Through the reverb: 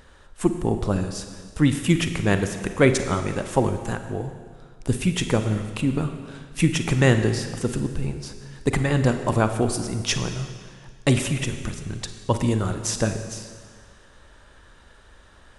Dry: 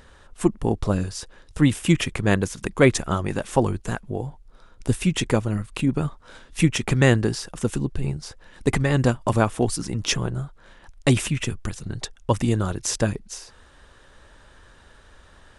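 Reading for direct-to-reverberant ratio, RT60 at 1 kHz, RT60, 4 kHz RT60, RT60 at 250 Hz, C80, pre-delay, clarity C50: 7.5 dB, 1.7 s, 1.7 s, 1.7 s, 1.7 s, 9.5 dB, 36 ms, 8.5 dB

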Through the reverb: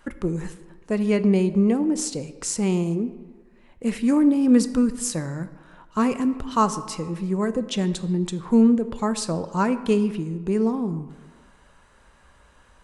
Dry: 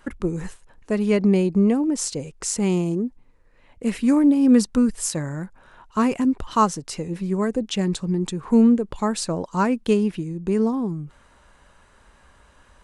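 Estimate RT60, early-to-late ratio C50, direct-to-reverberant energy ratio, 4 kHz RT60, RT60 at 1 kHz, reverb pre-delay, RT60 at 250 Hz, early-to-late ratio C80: 1.4 s, 13.5 dB, 11.0 dB, 0.90 s, 1.5 s, 3 ms, 1.3 s, 15.0 dB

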